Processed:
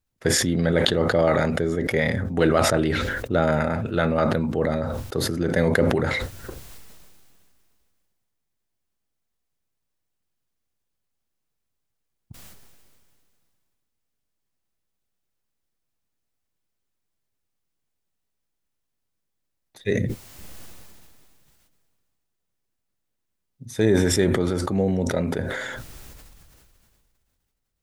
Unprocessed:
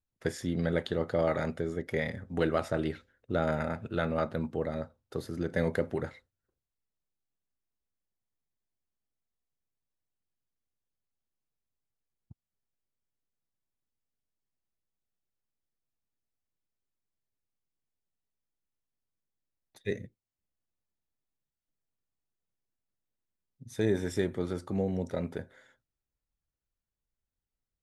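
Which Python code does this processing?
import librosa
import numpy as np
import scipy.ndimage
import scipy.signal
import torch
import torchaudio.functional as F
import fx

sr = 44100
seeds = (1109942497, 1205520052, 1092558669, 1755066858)

y = fx.sustainer(x, sr, db_per_s=24.0)
y = F.gain(torch.from_numpy(y), 8.0).numpy()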